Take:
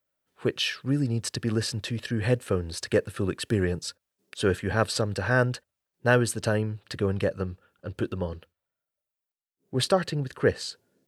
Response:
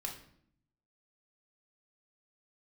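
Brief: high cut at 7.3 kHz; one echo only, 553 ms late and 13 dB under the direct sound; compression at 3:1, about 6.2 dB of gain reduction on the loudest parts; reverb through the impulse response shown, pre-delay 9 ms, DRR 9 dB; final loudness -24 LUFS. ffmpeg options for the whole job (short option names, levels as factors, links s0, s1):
-filter_complex "[0:a]lowpass=7300,acompressor=threshold=0.0631:ratio=3,aecho=1:1:553:0.224,asplit=2[s0][s1];[1:a]atrim=start_sample=2205,adelay=9[s2];[s1][s2]afir=irnorm=-1:irlink=0,volume=0.376[s3];[s0][s3]amix=inputs=2:normalize=0,volume=2.11"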